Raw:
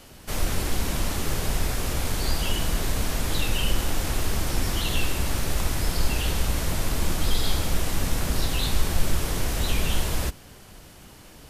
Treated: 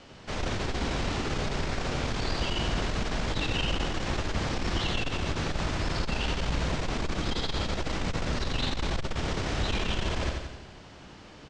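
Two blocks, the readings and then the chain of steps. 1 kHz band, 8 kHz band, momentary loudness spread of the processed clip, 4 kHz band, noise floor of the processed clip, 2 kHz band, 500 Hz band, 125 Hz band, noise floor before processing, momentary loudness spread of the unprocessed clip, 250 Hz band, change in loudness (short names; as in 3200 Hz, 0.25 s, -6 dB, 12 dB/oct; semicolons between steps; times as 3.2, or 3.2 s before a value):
-0.5 dB, -11.5 dB, 4 LU, -2.5 dB, -49 dBFS, -1.0 dB, -0.5 dB, -3.5 dB, -47 dBFS, 4 LU, -1.0 dB, -3.5 dB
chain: Bessel low-pass 4200 Hz, order 8; low shelf 62 Hz -10 dB; on a send: feedback echo 87 ms, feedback 55%, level -5 dB; on the sum: core saturation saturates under 69 Hz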